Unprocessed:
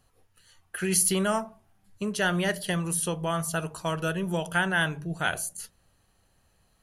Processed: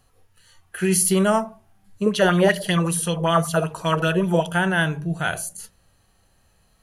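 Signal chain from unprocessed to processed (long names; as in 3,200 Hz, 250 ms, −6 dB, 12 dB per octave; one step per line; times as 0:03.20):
harmonic and percussive parts rebalanced percussive −9 dB
0:02.06–0:04.47: auto-filter bell 5.2 Hz 410–3,900 Hz +12 dB
level +8 dB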